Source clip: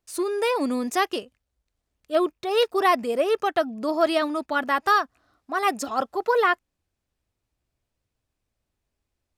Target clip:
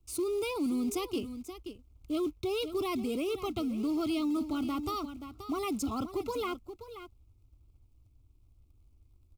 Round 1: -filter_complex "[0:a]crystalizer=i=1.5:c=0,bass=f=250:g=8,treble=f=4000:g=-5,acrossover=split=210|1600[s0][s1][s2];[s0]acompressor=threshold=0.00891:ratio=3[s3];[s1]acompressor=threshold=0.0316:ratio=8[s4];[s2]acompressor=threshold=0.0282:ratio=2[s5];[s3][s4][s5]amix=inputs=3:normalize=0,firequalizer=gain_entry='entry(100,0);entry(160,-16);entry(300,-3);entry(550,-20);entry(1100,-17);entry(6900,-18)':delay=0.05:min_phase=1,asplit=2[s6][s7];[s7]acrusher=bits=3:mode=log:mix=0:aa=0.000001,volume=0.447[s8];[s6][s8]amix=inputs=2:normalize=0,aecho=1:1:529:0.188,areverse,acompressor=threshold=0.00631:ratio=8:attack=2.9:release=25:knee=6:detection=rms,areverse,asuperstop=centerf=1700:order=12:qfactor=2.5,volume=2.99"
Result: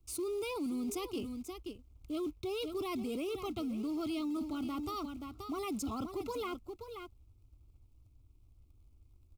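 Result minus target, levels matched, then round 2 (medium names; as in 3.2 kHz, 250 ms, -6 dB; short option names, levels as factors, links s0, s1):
compression: peak gain reduction +5.5 dB
-filter_complex "[0:a]crystalizer=i=1.5:c=0,bass=f=250:g=8,treble=f=4000:g=-5,acrossover=split=210|1600[s0][s1][s2];[s0]acompressor=threshold=0.00891:ratio=3[s3];[s1]acompressor=threshold=0.0316:ratio=8[s4];[s2]acompressor=threshold=0.0282:ratio=2[s5];[s3][s4][s5]amix=inputs=3:normalize=0,firequalizer=gain_entry='entry(100,0);entry(160,-16);entry(300,-3);entry(550,-20);entry(1100,-17);entry(6900,-18)':delay=0.05:min_phase=1,asplit=2[s6][s7];[s7]acrusher=bits=3:mode=log:mix=0:aa=0.000001,volume=0.447[s8];[s6][s8]amix=inputs=2:normalize=0,aecho=1:1:529:0.188,areverse,acompressor=threshold=0.0133:ratio=8:attack=2.9:release=25:knee=6:detection=rms,areverse,asuperstop=centerf=1700:order=12:qfactor=2.5,volume=2.99"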